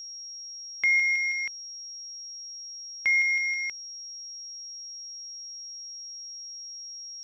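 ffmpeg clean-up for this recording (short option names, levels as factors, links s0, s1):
-af "bandreject=f=5600:w=30"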